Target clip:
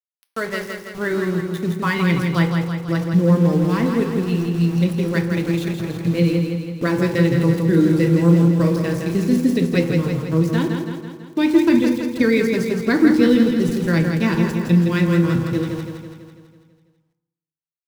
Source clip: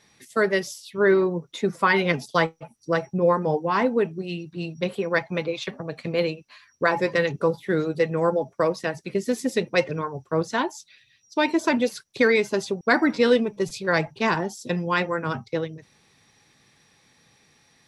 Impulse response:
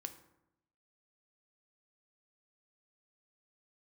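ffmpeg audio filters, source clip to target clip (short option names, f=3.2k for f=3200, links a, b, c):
-filter_complex "[0:a]acrossover=split=4100[a][b];[b]acompressor=threshold=-48dB:ratio=4:attack=1:release=60[c];[a][c]amix=inputs=2:normalize=0,aemphasis=mode=production:type=75kf,bandreject=f=50:t=h:w=6,bandreject=f=100:t=h:w=6,bandreject=f=150:t=h:w=6,asubboost=boost=9.5:cutoff=230,aeval=exprs='val(0)*gte(abs(val(0)),0.0376)':c=same,asettb=1/sr,asplit=3[d][e][f];[d]atrim=end=7.334[g];[e]atrim=start=7.33:end=9.44,asetpts=PTS-STARTPTS,afade=t=in:d=0.004:c=qsin,afade=t=out:st=2.106:d=0.004:c=qsin,asplit=2[h][i];[i]adelay=36,volume=-6dB[j];[h][j]amix=inputs=2:normalize=0,atrim=end_sample=93051[k];[f]atrim=start=9.436[l];[g][k]acrossfade=d=0.004:c1=hsin:c2=qsin[m];[m][l]acrossfade=d=0.004:c1=qsin:c2=hsin,aecho=1:1:165|330|495|660|825|990|1155|1320:0.531|0.303|0.172|0.0983|0.056|0.0319|0.0182|0.0104[n];[1:a]atrim=start_sample=2205[o];[n][o]afir=irnorm=-1:irlink=0"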